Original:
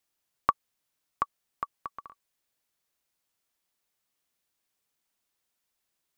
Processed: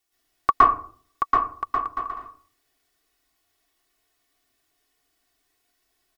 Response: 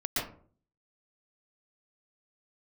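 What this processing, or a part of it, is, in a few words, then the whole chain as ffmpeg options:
microphone above a desk: -filter_complex "[0:a]aecho=1:1:2.7:0.79[link_01];[1:a]atrim=start_sample=2205[link_02];[link_01][link_02]afir=irnorm=-1:irlink=0,volume=2dB"

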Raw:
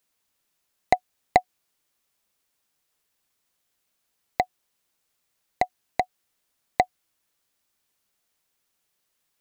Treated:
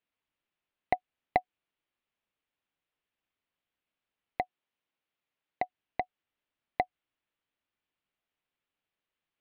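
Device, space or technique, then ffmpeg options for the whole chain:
phone in a pocket: -filter_complex "[0:a]asettb=1/sr,asplit=3[link_01][link_02][link_03];[link_01]atrim=end=4.424[link_04];[link_02]atrim=start=4.42:end=5.64,asetpts=PTS-STARTPTS,afade=type=in:duration=0.004:curve=qsin,afade=type=out:start_time=1.216:duration=0.004:curve=qsin,highpass=frequency=120:poles=1[link_05];[link_03]atrim=start=5.636[link_06];[link_04][link_05]acrossfade=duration=0.004:curve1=hsin:curve2=qsin[link_07];[link_07][link_06]acrossfade=duration=0.004:curve1=qsin:curve2=hsin,lowpass=3000,equalizer=frequency=290:width_type=o:width=0.22:gain=3,highshelf=frequency=2100:gain=-11,equalizer=frequency=3000:width_type=o:width=1.4:gain=10.5,volume=-8dB"

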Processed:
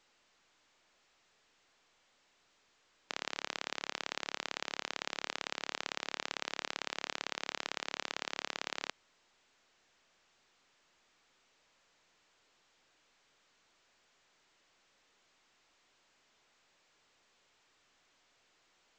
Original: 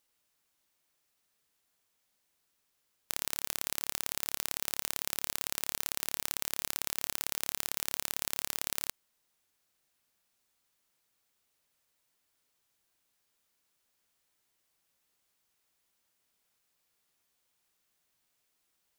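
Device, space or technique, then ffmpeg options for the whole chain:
telephone: -af "highpass=280,lowpass=3500,volume=3dB" -ar 16000 -c:a pcm_alaw

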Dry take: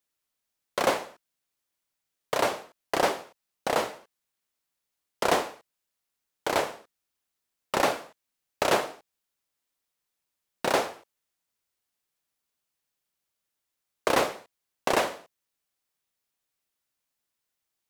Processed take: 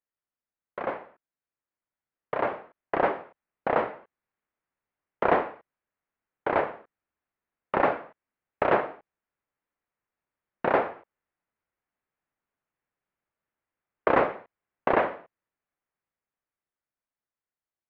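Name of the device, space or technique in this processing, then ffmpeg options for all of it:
action camera in a waterproof case: -af "lowpass=frequency=2100:width=0.5412,lowpass=frequency=2100:width=1.3066,dynaudnorm=framelen=370:gausssize=13:maxgain=16dB,volume=-7dB" -ar 48000 -c:a aac -b:a 96k

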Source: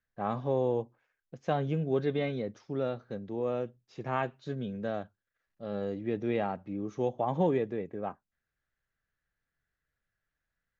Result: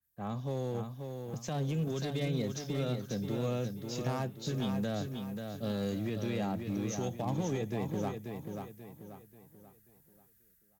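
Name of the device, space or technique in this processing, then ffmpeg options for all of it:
FM broadcast chain: -filter_complex "[0:a]highpass=49,bass=frequency=250:gain=12,treble=frequency=4000:gain=1,dynaudnorm=framelen=750:gausssize=3:maxgain=11dB,acrossover=split=200|1100[link_01][link_02][link_03];[link_01]acompressor=threshold=-28dB:ratio=4[link_04];[link_02]acompressor=threshold=-24dB:ratio=4[link_05];[link_03]acompressor=threshold=-40dB:ratio=4[link_06];[link_04][link_05][link_06]amix=inputs=3:normalize=0,aemphasis=mode=production:type=50fm,alimiter=limit=-17dB:level=0:latency=1:release=70,asoftclip=type=hard:threshold=-19dB,lowpass=frequency=15000:width=0.5412,lowpass=frequency=15000:width=1.3066,aemphasis=mode=production:type=50fm,aecho=1:1:536|1072|1608|2144|2680:0.501|0.195|0.0762|0.0297|0.0116,adynamicequalizer=threshold=0.00501:dfrequency=2500:dqfactor=0.7:tfrequency=2500:tqfactor=0.7:attack=5:release=100:ratio=0.375:range=2.5:mode=boostabove:tftype=highshelf,volume=-9dB"

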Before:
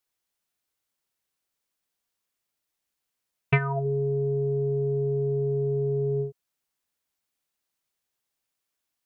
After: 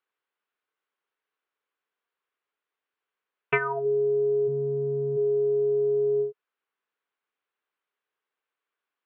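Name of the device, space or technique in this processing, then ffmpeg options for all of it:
phone earpiece: -filter_complex "[0:a]highpass=350,equalizer=frequency=430:width_type=q:width=4:gain=7,equalizer=frequency=650:width_type=q:width=4:gain=-3,equalizer=frequency=1100:width_type=q:width=4:gain=5,equalizer=frequency=1500:width_type=q:width=4:gain=5,lowpass=frequency=3100:width=0.5412,lowpass=frequency=3100:width=1.3066,asplit=3[link_01][link_02][link_03];[link_01]afade=type=out:start_time=4.47:duration=0.02[link_04];[link_02]asubboost=boost=9.5:cutoff=120,afade=type=in:start_time=4.47:duration=0.02,afade=type=out:start_time=5.16:duration=0.02[link_05];[link_03]afade=type=in:start_time=5.16:duration=0.02[link_06];[link_04][link_05][link_06]amix=inputs=3:normalize=0"

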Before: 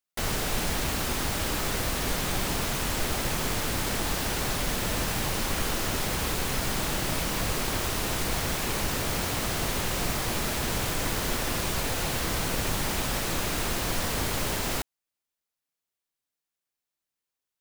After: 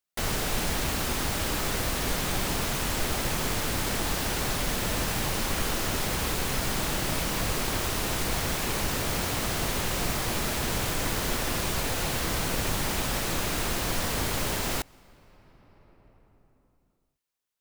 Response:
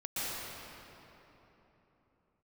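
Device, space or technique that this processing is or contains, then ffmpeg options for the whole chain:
ducked reverb: -filter_complex "[0:a]asplit=3[link_01][link_02][link_03];[1:a]atrim=start_sample=2205[link_04];[link_02][link_04]afir=irnorm=-1:irlink=0[link_05];[link_03]apad=whole_len=776399[link_06];[link_05][link_06]sidechaincompress=threshold=-42dB:ratio=6:attack=35:release=1150,volume=-17dB[link_07];[link_01][link_07]amix=inputs=2:normalize=0"

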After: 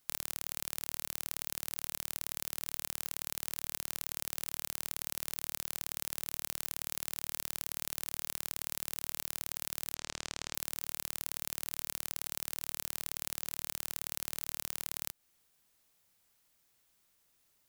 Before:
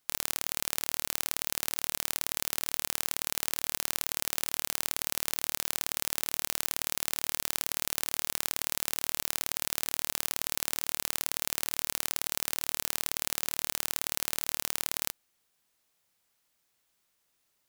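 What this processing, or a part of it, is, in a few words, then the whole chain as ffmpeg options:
ASMR close-microphone chain: -filter_complex "[0:a]asettb=1/sr,asplit=3[link_01][link_02][link_03];[link_01]atrim=end=9.944[link_04];[link_02]atrim=start=9.94:end=10.55,asetpts=PTS-STARTPTS,afade=type=in:duration=0.004:curve=qsin,afade=type=out:start_time=0.606:duration=0.004:curve=qsin,lowpass=frequency=7300:width=0.5412,lowpass=frequency=7300:width=1.3066[link_05];[link_03]atrim=start=10.546[link_06];[link_04][link_05]acrossfade=duration=0.004:curve1=hsin:curve2=qsin[link_07];[link_07][link_06]acrossfade=duration=0.004:curve1=qsin:curve2=hsin,lowshelf=frequency=190:gain=6.5,acompressor=threshold=-33dB:ratio=5,highshelf=frequency=8400:gain=4"

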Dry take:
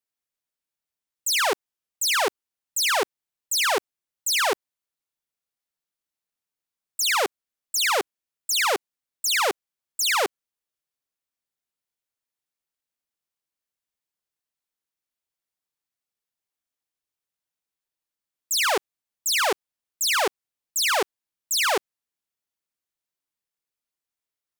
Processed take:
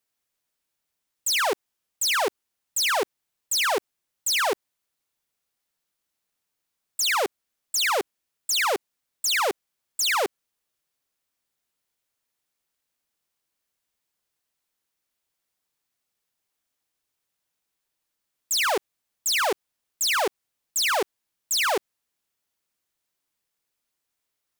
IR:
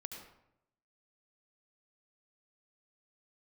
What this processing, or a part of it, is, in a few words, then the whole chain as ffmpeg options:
clipper into limiter: -af "asoftclip=type=hard:threshold=-21.5dB,alimiter=level_in=4.5dB:limit=-24dB:level=0:latency=1,volume=-4.5dB,volume=8dB"

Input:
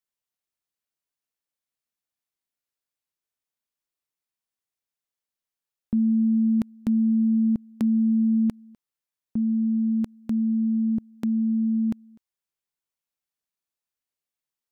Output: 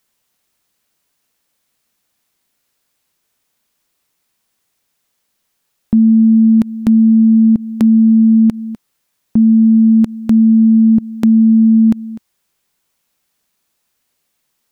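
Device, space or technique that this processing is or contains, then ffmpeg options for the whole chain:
mastering chain: -af "equalizer=frequency=210:width_type=o:width=0.77:gain=3.5,acompressor=threshold=-22dB:ratio=2.5,alimiter=level_in=25.5dB:limit=-1dB:release=50:level=0:latency=1,volume=-4dB"

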